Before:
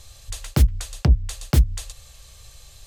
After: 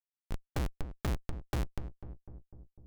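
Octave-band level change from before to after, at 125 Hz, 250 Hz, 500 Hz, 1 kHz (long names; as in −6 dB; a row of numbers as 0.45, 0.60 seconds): −17.0, −12.5, −8.0, −7.0 decibels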